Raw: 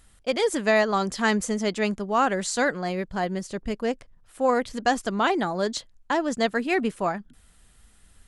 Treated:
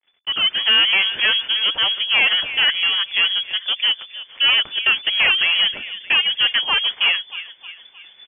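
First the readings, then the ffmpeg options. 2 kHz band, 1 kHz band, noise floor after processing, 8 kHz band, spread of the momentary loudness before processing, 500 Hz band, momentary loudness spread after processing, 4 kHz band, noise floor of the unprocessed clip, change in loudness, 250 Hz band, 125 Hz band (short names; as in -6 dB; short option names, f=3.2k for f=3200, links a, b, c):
+11.0 dB, -5.5 dB, -50 dBFS, under -40 dB, 7 LU, -15.0 dB, 8 LU, +22.5 dB, -57 dBFS, +9.0 dB, under -15 dB, under -10 dB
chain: -filter_complex "[0:a]agate=range=-33dB:threshold=-50dB:ratio=3:detection=peak,equalizer=f=290:t=o:w=0.71:g=-14.5,aecho=1:1:311|622|933|1244:0.1|0.048|0.023|0.0111,acrossover=split=1200[a][b];[a]acontrast=87[c];[c][b]amix=inputs=2:normalize=0,asoftclip=type=tanh:threshold=-22dB,asplit=2[d][e];[e]acrusher=bits=4:mode=log:mix=0:aa=0.000001,volume=-7dB[f];[d][f]amix=inputs=2:normalize=0,lowshelf=f=160:g=-11,dynaudnorm=f=230:g=3:m=10dB,acrusher=bits=8:mix=0:aa=0.5,lowpass=f=3k:t=q:w=0.5098,lowpass=f=3k:t=q:w=0.6013,lowpass=f=3k:t=q:w=0.9,lowpass=f=3k:t=q:w=2.563,afreqshift=-3500,volume=-3dB"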